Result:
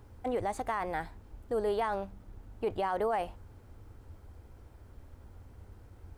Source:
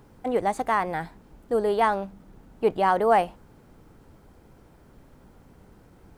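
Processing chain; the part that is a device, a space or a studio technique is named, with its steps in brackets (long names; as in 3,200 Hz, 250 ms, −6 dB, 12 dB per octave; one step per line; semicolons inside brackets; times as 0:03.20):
car stereo with a boomy subwoofer (low shelf with overshoot 120 Hz +7 dB, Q 3; brickwall limiter −18.5 dBFS, peak gain reduction 9.5 dB)
level −4.5 dB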